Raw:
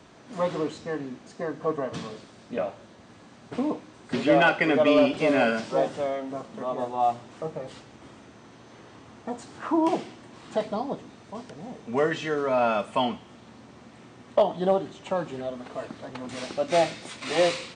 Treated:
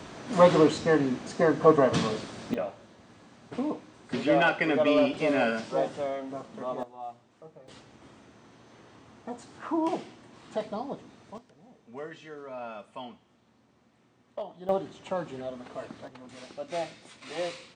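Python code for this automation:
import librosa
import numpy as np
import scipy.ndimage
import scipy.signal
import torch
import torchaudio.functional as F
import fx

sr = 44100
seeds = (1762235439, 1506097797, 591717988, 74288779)

y = fx.gain(x, sr, db=fx.steps((0.0, 8.5), (2.54, -3.5), (6.83, -16.5), (7.68, -5.0), (11.38, -16.0), (14.69, -4.0), (16.08, -11.0)))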